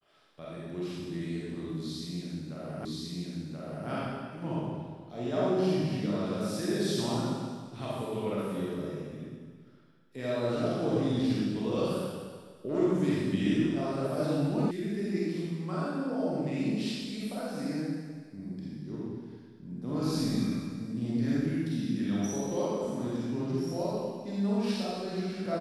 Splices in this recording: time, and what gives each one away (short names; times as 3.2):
2.85 repeat of the last 1.03 s
14.71 sound cut off